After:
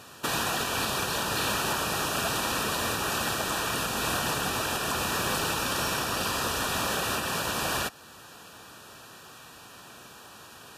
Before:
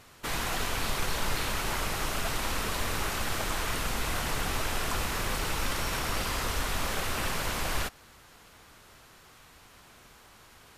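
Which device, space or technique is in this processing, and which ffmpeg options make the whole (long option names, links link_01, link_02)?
PA system with an anti-feedback notch: -af "highpass=120,asuperstop=centerf=2100:order=12:qfactor=5.4,alimiter=level_in=1.5dB:limit=-24dB:level=0:latency=1:release=386,volume=-1.5dB,volume=7.5dB"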